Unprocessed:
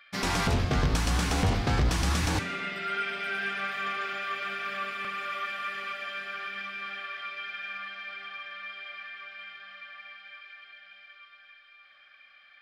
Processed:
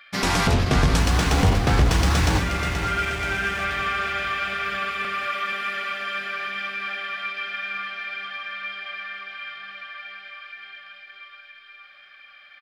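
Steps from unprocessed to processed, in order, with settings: 0.99–3.65 backlash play -36.5 dBFS; feedback echo 0.479 s, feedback 54%, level -9 dB; ending taper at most 150 dB/s; gain +6.5 dB

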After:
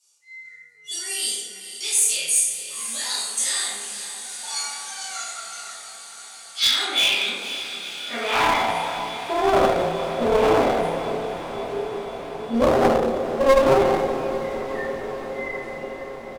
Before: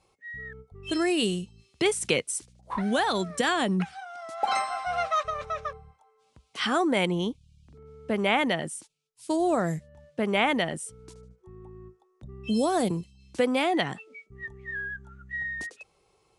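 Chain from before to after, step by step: delay-line pitch shifter +1.5 st; HPF 99 Hz; low shelf 370 Hz +6 dB; doubler 30 ms -4 dB; reverb RT60 1.4 s, pre-delay 3 ms, DRR -11.5 dB; band-pass sweep 7100 Hz -> 510 Hz, 5.88–9.74; notches 50/100/150/200 Hz; one-sided clip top -21.5 dBFS; high shelf 3200 Hz +12 dB; diffused feedback echo 0.489 s, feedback 77%, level -11.5 dB

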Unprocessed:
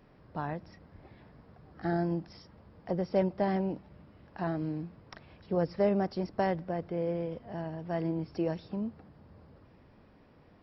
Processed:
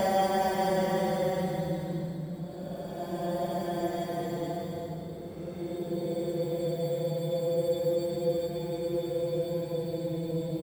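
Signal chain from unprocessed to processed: short-time reversal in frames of 0.122 s; in parallel at -3 dB: sample-and-hold 11×; on the sum: Paulstretch 12×, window 0.10 s, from 6.43; echo 0.421 s -7.5 dB

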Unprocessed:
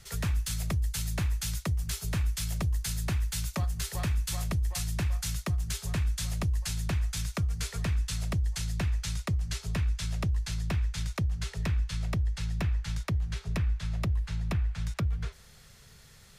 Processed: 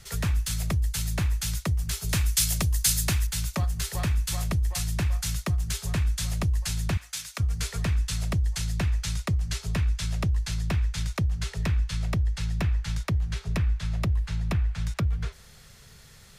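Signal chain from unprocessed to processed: 2.09–3.27 high shelf 2900 Hz +11.5 dB; 6.97–7.4 HPF 1400 Hz 6 dB/oct; gain +3.5 dB

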